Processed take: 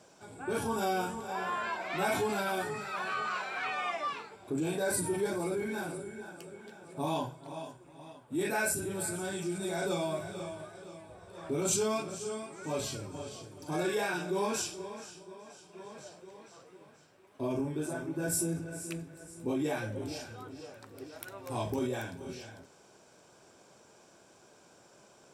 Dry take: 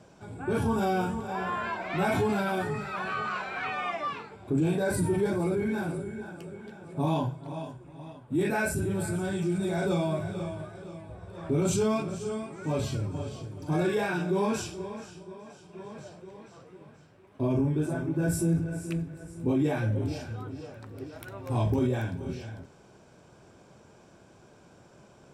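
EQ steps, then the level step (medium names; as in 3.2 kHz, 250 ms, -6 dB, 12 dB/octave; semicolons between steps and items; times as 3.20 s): tone controls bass -4 dB, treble +7 dB; bass shelf 180 Hz -10 dB; -2.0 dB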